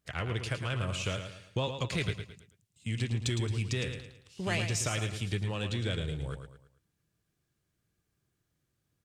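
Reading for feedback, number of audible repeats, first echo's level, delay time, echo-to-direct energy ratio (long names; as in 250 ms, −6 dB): 38%, 4, −8.0 dB, 110 ms, −7.5 dB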